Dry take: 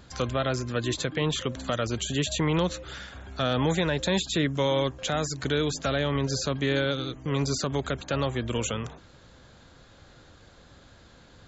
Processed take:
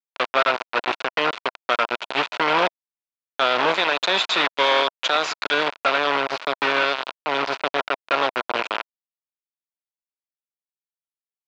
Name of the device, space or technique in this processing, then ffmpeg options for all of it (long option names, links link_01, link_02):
hand-held game console: -filter_complex "[0:a]asettb=1/sr,asplit=3[link_01][link_02][link_03];[link_01]atrim=end=3.744[link_04];[link_02]atrim=start=3.74:end=5.54,asetpts=PTS-STARTPTS,afade=type=in:duration=0.004:curve=qsin,afade=type=out:start_time=1.796:duration=0.004:curve=qsin,bass=frequency=250:gain=-4,treble=frequency=4000:gain=14[link_05];[link_03]atrim=start=5.536[link_06];[link_04][link_05]acrossfade=duration=0.004:curve1=hsin:curve2=qsin[link_07];[link_07][link_06]acrossfade=duration=0.004:curve1=qsin:curve2=hsin,acrusher=bits=3:mix=0:aa=0.000001,highpass=450,equalizer=frequency=660:width_type=q:width=4:gain=4,equalizer=frequency=990:width_type=q:width=4:gain=6,equalizer=frequency=1400:width_type=q:width=4:gain=7,equalizer=frequency=2500:width_type=q:width=4:gain=5,lowpass=frequency=4000:width=0.5412,lowpass=frequency=4000:width=1.3066,volume=4.5dB"